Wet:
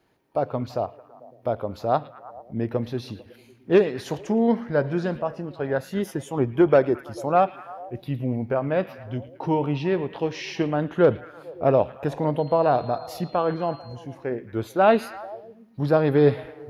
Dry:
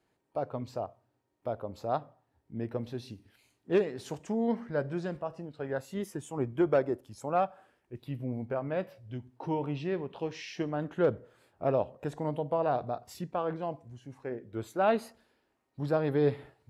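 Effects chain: peaking EQ 7.9 kHz -14 dB 0.25 oct; repeats whose band climbs or falls 111 ms, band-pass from 2.8 kHz, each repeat -0.7 oct, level -11 dB; 12.38–13.94 s: whistle 4.2 kHz -60 dBFS; trim +9 dB

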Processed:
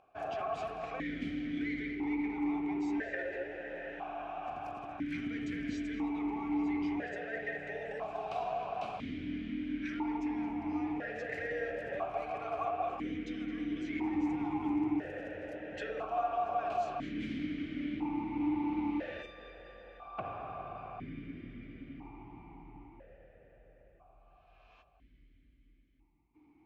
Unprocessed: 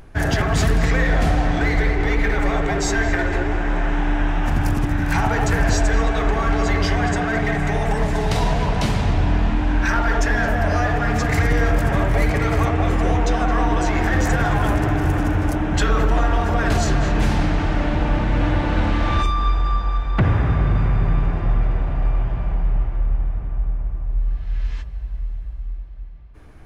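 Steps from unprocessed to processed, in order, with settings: stepped vowel filter 1 Hz; trim -4.5 dB

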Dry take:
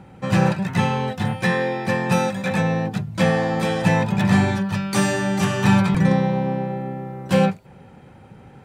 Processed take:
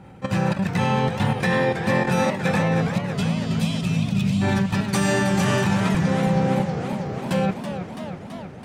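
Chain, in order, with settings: level held to a coarse grid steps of 12 dB; spectral selection erased 2.82–4.42 s, 300–2400 Hz; modulated delay 326 ms, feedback 72%, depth 165 cents, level -9 dB; trim +3.5 dB

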